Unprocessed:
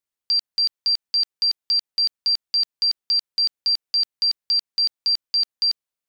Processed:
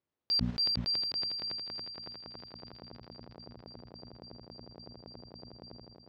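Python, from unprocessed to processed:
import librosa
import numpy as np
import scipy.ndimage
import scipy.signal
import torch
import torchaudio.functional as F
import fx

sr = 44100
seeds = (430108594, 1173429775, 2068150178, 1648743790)

y = scipy.signal.sosfilt(scipy.signal.butter(2, 73.0, 'highpass', fs=sr, output='sos'), x)
y = fx.tilt_shelf(y, sr, db=9.0, hz=1100.0)
y = fx.hum_notches(y, sr, base_hz=60, count=4)
y = fx.level_steps(y, sr, step_db=9)
y = fx.filter_sweep_lowpass(y, sr, from_hz=5500.0, to_hz=670.0, start_s=0.14, end_s=3.06, q=0.96)
y = 10.0 ** (-30.5 / 20.0) * np.tanh(y / 10.0 ** (-30.5 / 20.0))
y = fx.air_absorb(y, sr, metres=88.0)
y = fx.echo_feedback(y, sr, ms=362, feedback_pct=58, wet_db=-8.0)
y = fx.sustainer(y, sr, db_per_s=28.0)
y = F.gain(torch.from_numpy(y), 8.5).numpy()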